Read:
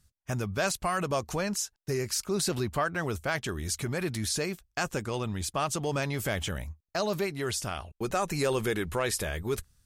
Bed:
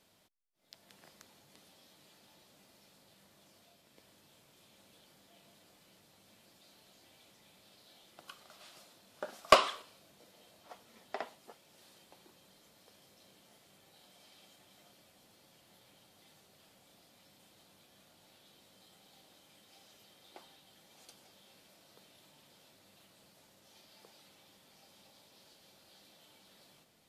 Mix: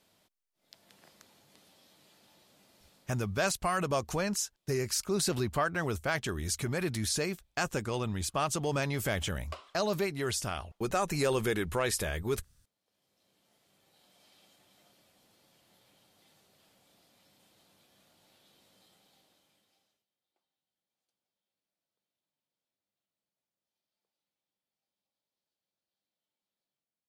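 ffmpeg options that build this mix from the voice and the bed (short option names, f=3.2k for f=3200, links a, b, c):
-filter_complex "[0:a]adelay=2800,volume=-1dB[a];[1:a]volume=20dB,afade=t=out:st=2.95:d=0.49:silence=0.0749894,afade=t=in:st=12.82:d=1.46:silence=0.1,afade=t=out:st=18.79:d=1.26:silence=0.0354813[b];[a][b]amix=inputs=2:normalize=0"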